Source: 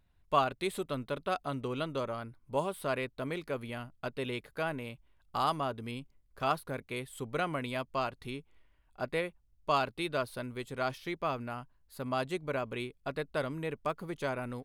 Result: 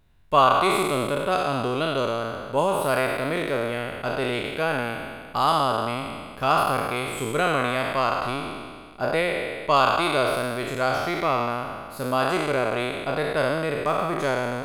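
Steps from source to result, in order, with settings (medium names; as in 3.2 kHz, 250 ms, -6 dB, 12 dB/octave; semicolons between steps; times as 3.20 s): spectral sustain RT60 1.84 s; trim +7 dB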